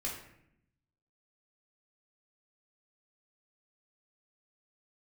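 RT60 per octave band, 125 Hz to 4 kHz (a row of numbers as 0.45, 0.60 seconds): 1.3, 1.1, 0.80, 0.65, 0.75, 0.50 seconds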